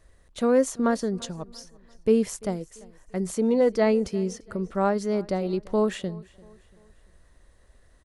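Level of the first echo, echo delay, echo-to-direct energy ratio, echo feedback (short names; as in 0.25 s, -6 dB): -23.0 dB, 0.342 s, -22.0 dB, 43%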